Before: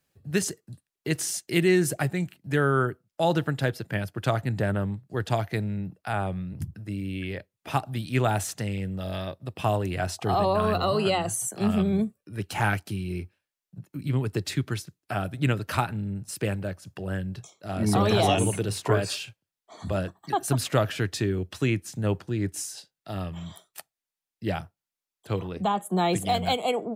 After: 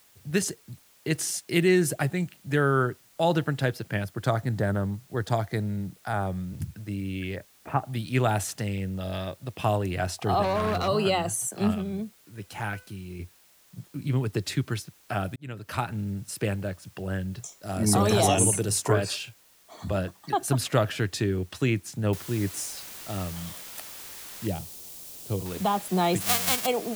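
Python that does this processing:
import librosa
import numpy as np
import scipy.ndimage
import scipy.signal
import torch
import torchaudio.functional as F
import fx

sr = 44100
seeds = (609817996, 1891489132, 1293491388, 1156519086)

y = fx.peak_eq(x, sr, hz=2700.0, db=-13.5, octaves=0.33, at=(4.04, 6.53))
y = fx.lowpass(y, sr, hz=2000.0, slope=24, at=(7.35, 7.88), fade=0.02)
y = fx.overload_stage(y, sr, gain_db=22.5, at=(10.42, 10.88))
y = fx.comb_fb(y, sr, f0_hz=500.0, decay_s=0.44, harmonics='all', damping=0.0, mix_pct=60, at=(11.73, 13.19), fade=0.02)
y = fx.high_shelf_res(y, sr, hz=4900.0, db=8.5, q=1.5, at=(17.39, 18.92))
y = fx.noise_floor_step(y, sr, seeds[0], at_s=22.13, before_db=-59, after_db=-42, tilt_db=0.0)
y = fx.peak_eq(y, sr, hz=1600.0, db=-14.0, octaves=1.8, at=(24.47, 25.46))
y = fx.envelope_flatten(y, sr, power=0.1, at=(26.2, 26.65), fade=0.02)
y = fx.edit(y, sr, fx.fade_in_span(start_s=15.36, length_s=0.65), tone=tone)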